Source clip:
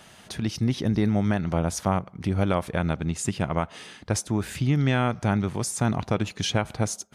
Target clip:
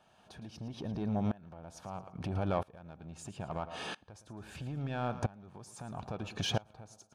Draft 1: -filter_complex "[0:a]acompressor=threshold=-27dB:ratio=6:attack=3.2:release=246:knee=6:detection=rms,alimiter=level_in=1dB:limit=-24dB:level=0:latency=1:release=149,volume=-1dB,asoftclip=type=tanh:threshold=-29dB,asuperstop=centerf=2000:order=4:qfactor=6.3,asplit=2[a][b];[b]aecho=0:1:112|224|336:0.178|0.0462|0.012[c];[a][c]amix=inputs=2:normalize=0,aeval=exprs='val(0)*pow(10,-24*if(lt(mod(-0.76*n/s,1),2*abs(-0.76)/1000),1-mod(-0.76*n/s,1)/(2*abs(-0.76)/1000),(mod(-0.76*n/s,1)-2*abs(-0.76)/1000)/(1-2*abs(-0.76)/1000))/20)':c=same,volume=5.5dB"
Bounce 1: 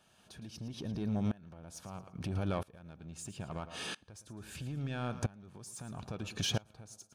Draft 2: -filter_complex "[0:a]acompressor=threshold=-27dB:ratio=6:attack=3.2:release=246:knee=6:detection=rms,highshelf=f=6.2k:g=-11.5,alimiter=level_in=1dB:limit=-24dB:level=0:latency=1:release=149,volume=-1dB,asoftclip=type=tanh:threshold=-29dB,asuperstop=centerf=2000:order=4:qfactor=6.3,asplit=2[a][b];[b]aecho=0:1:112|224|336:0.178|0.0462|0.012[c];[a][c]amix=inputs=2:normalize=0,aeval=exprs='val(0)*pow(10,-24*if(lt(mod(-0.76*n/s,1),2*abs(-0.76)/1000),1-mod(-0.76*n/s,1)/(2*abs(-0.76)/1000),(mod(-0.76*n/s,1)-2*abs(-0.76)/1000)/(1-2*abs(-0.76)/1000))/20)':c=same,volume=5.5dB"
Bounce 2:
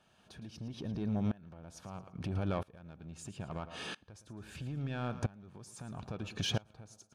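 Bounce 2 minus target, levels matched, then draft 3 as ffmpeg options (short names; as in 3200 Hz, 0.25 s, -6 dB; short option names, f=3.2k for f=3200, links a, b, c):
1000 Hz band -4.5 dB
-filter_complex "[0:a]acompressor=threshold=-27dB:ratio=6:attack=3.2:release=246:knee=6:detection=rms,highshelf=f=6.2k:g=-11.5,alimiter=level_in=1dB:limit=-24dB:level=0:latency=1:release=149,volume=-1dB,asoftclip=type=tanh:threshold=-29dB,asuperstop=centerf=2000:order=4:qfactor=6.3,equalizer=f=780:w=1.4:g=7.5,asplit=2[a][b];[b]aecho=0:1:112|224|336:0.178|0.0462|0.012[c];[a][c]amix=inputs=2:normalize=0,aeval=exprs='val(0)*pow(10,-24*if(lt(mod(-0.76*n/s,1),2*abs(-0.76)/1000),1-mod(-0.76*n/s,1)/(2*abs(-0.76)/1000),(mod(-0.76*n/s,1)-2*abs(-0.76)/1000)/(1-2*abs(-0.76)/1000))/20)':c=same,volume=5.5dB"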